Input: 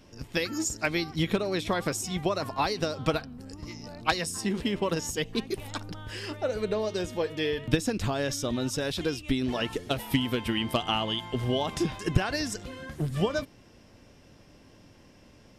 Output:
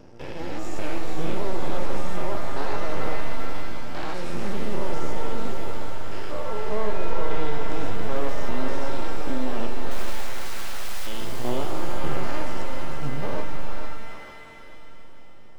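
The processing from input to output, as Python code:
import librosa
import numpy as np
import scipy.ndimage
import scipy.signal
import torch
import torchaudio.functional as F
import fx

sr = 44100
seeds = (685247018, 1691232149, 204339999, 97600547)

p1 = fx.spec_steps(x, sr, hold_ms=200)
p2 = fx.lowpass(p1, sr, hz=2000.0, slope=6)
p3 = fx.peak_eq(p2, sr, hz=500.0, db=6.0, octaves=1.7)
p4 = fx.rider(p3, sr, range_db=4, speed_s=0.5)
p5 = p3 + F.gain(torch.from_numpy(p4), 0.5).numpy()
p6 = fx.overflow_wrap(p5, sr, gain_db=26.0, at=(9.91, 11.07))
p7 = fx.vibrato(p6, sr, rate_hz=1.8, depth_cents=17.0)
p8 = np.maximum(p7, 0.0)
p9 = fx.echo_thinned(p8, sr, ms=446, feedback_pct=46, hz=470.0, wet_db=-6.5)
p10 = fx.rev_shimmer(p9, sr, seeds[0], rt60_s=2.2, semitones=7, shimmer_db=-2, drr_db=6.0)
y = F.gain(torch.from_numpy(p10), -4.5).numpy()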